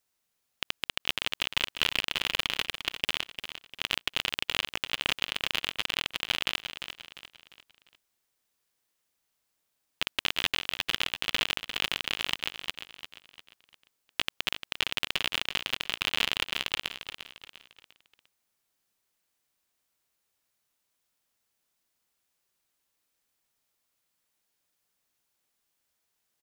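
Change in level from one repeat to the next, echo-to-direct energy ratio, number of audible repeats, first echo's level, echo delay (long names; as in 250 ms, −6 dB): −8.0 dB, −9.5 dB, 4, −10.0 dB, 349 ms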